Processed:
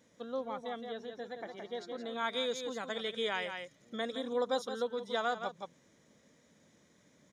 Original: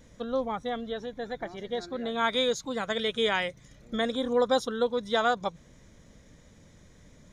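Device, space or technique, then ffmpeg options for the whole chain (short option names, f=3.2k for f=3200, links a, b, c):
ducked delay: -filter_complex "[0:a]asplit=3[a][b][c];[b]adelay=169,volume=-4.5dB[d];[c]apad=whole_len=330532[e];[d][e]sidechaincompress=threshold=-32dB:ratio=8:attack=11:release=172[f];[a][f]amix=inputs=2:normalize=0,highpass=200,volume=-8dB"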